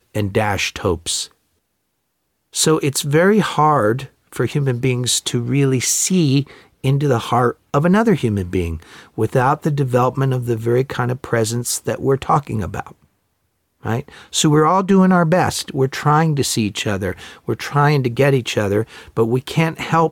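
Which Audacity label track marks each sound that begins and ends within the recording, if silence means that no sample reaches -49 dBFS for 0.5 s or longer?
2.530000	13.060000	sound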